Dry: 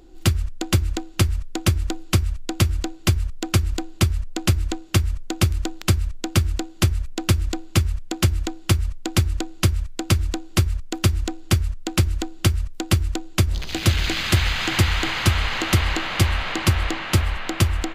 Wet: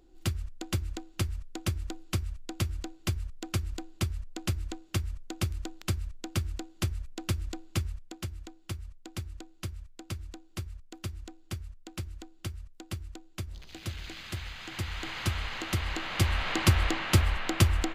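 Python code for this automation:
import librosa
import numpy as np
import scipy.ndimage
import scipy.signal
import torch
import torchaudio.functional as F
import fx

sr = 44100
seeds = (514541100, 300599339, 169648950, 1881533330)

y = fx.gain(x, sr, db=fx.line((7.86, -12.0), (8.26, -19.0), (14.63, -19.0), (15.21, -12.0), (15.78, -12.0), (16.58, -4.0)))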